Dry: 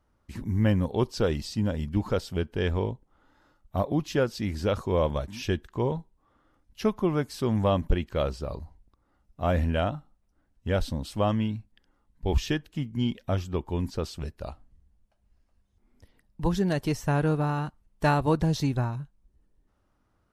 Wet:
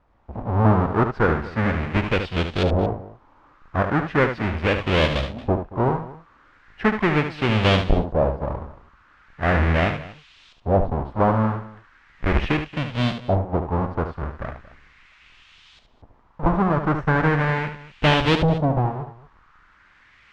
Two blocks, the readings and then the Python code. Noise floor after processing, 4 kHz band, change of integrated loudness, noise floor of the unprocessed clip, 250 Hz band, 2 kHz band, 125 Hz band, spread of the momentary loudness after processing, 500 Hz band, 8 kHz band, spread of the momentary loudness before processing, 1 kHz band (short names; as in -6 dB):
-56 dBFS, +9.0 dB, +6.5 dB, -71 dBFS, +5.0 dB, +12.5 dB, +5.5 dB, 13 LU, +5.5 dB, n/a, 12 LU, +9.0 dB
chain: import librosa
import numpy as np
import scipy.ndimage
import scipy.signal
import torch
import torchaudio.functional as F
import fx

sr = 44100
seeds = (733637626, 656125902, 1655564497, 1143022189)

p1 = fx.halfwave_hold(x, sr)
p2 = fx.dmg_noise_band(p1, sr, seeds[0], low_hz=950.0, high_hz=7900.0, level_db=-55.0)
p3 = fx.filter_lfo_lowpass(p2, sr, shape='saw_up', hz=0.38, low_hz=650.0, high_hz=3600.0, q=2.5)
y = p3 + fx.echo_multitap(p3, sr, ms=(73, 228), db=(-8.5, -18.0), dry=0)